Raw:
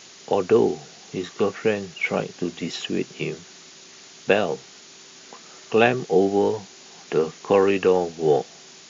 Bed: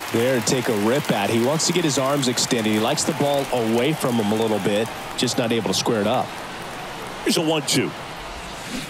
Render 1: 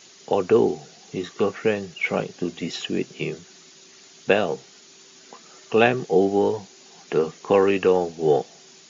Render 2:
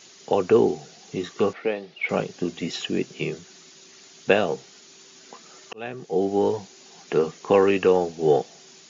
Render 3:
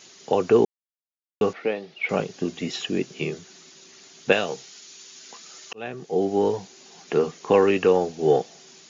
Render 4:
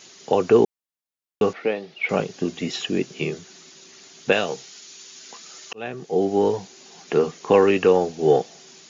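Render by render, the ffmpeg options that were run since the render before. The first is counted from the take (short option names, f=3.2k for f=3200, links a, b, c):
-af "afftdn=nr=6:nf=-46"
-filter_complex "[0:a]asettb=1/sr,asplit=3[a][b][c];[a]atrim=end=1.534[d];[b]atrim=start=1.53:end=2.09,asetpts=PTS-STARTPTS,afade=t=in:d=0.004:c=qsin,afade=t=out:st=0.556:d=0.004:c=qsin,highpass=320,equalizer=f=410:t=q:w=4:g=-4,equalizer=f=1.1k:t=q:w=4:g=-5,equalizer=f=1.6k:t=q:w=4:g=-8,equalizer=f=2.8k:t=q:w=4:g=-5,lowpass=f=4k:w=0.5412,lowpass=f=4k:w=1.3066[e];[c]atrim=start=2.086[f];[d][e]acrossfade=d=0.004:c1=hsin:c2=qsin[g];[g][f]acrossfade=d=0.004:c1=qsin:c2=hsin,asplit=2[h][i];[h]atrim=end=5.73,asetpts=PTS-STARTPTS,afade=t=out:st=5.726:d=0.004:c=hsin[j];[i]atrim=start=5.73,asetpts=PTS-STARTPTS,afade=t=in:d=0.79[k];[j][k]concat=n=2:v=0:a=1"
-filter_complex "[0:a]asettb=1/sr,asplit=3[a][b][c];[a]atrim=end=4.324[d];[b]atrim=start=4.32:end=5.75,asetpts=PTS-STARTPTS,afade=t=in:d=0.004:c=qsin,afade=t=out:st=1.426:d=0.004:c=qsin,tiltshelf=f=1.5k:g=-5.5[e];[c]atrim=start=5.746[f];[d][e]acrossfade=d=0.004:c1=hsin:c2=qsin[g];[g][f]acrossfade=d=0.004:c1=qsin:c2=hsin,asplit=3[h][i][j];[h]atrim=end=0.65,asetpts=PTS-STARTPTS,afade=t=out:st=0.646:d=0.004:c=hsin[k];[i]atrim=start=0.65:end=1.41,asetpts=PTS-STARTPTS,volume=0[l];[j]atrim=start=1.41,asetpts=PTS-STARTPTS,afade=t=in:d=0.004:c=hsin[m];[k][l][m]concat=n=3:v=0:a=1"
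-af "volume=2dB,alimiter=limit=-3dB:level=0:latency=1"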